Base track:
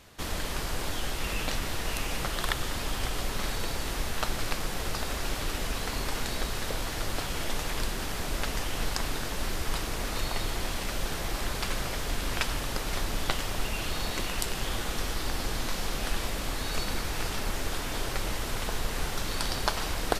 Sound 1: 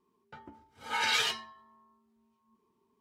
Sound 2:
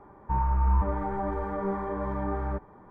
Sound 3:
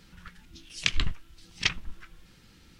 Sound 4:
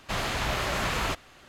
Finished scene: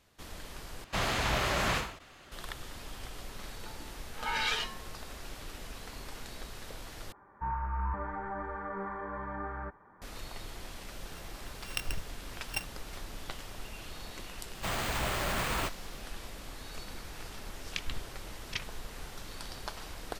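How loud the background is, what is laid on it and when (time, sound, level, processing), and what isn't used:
base track -12.5 dB
0.84 replace with 4 -1 dB + ending taper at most 100 dB/s
3.33 add 1 -2 dB + high shelf 5700 Hz -8.5 dB
7.12 replace with 2 -11.5 dB + bell 1600 Hz +13.5 dB 1.4 oct
10.91 add 3 -9.5 dB + sample sorter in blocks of 16 samples
14.54 add 4 -4 dB + careless resampling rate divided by 4×, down none, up hold
16.9 add 3 -11.5 dB

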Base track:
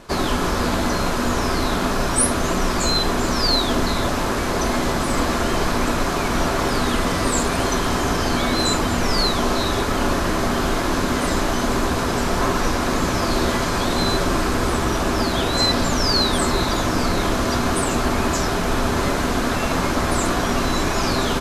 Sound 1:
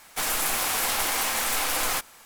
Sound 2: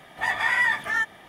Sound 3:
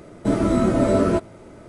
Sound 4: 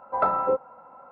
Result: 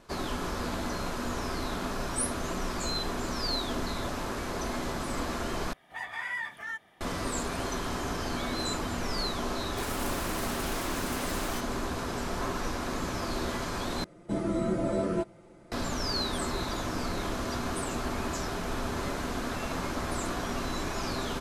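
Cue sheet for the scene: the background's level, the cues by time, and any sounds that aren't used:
base track -12.5 dB
5.73 replace with 2 -13 dB
9.6 add 1 -12.5 dB + Doppler distortion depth 0.39 ms
14.04 replace with 3 -11.5 dB + comb 5.8 ms, depth 54%
not used: 4

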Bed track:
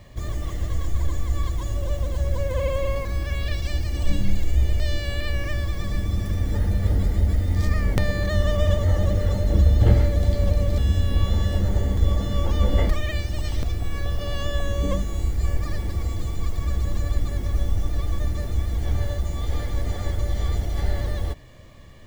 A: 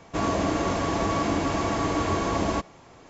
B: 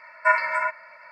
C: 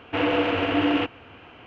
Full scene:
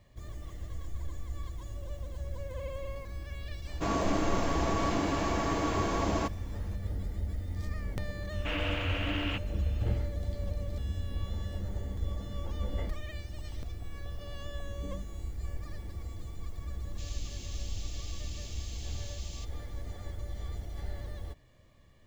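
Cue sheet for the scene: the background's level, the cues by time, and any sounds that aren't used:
bed track -14.5 dB
3.67 add A -5 dB
8.32 add C -3.5 dB + bell 510 Hz -14.5 dB 2.8 oct
16.84 add A -7.5 dB + inverse Chebyshev band-stop 120–1300 Hz, stop band 50 dB
not used: B

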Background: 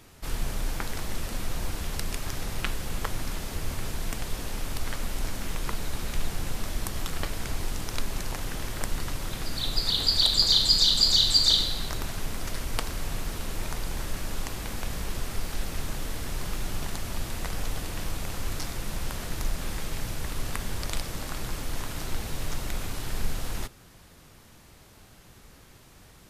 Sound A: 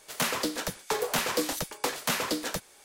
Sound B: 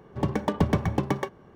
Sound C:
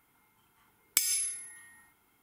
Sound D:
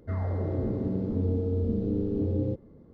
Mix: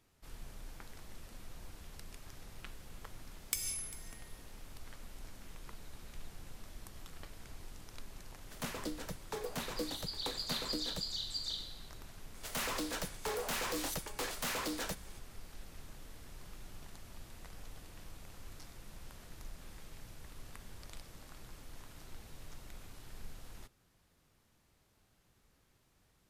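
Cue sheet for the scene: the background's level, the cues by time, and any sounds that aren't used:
background -19 dB
2.56 add C -9 dB + echo 0.397 s -18 dB
8.42 add A -15 dB + low shelf 390 Hz +10 dB
12.35 add A -4 dB + hard clip -30.5 dBFS
not used: B, D

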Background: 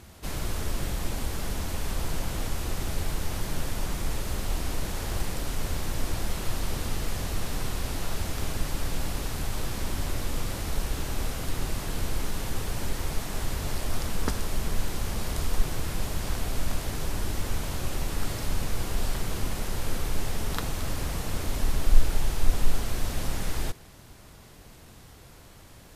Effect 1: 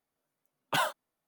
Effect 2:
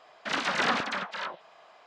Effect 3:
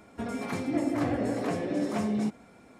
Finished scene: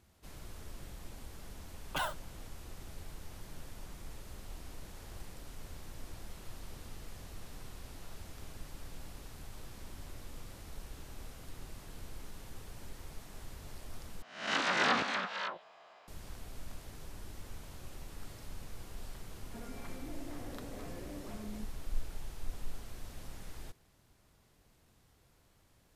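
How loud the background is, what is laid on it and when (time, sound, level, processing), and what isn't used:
background -17.5 dB
1.22 add 1 -7 dB
14.22 replace with 2 -5 dB + spectral swells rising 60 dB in 0.55 s
19.35 add 3 -14 dB + limiter -25 dBFS

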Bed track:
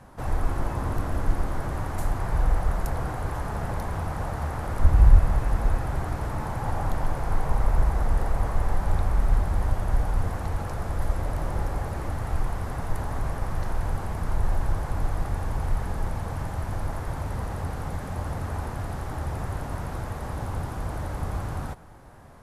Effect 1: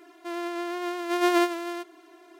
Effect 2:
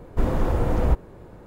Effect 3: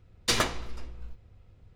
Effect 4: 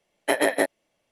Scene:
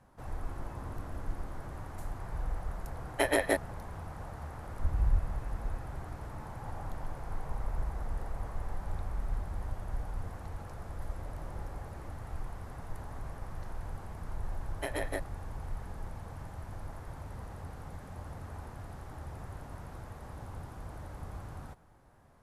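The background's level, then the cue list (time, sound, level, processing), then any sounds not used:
bed track -13 dB
2.91 add 4 -6 dB
14.54 add 4 -14.5 dB
not used: 1, 2, 3

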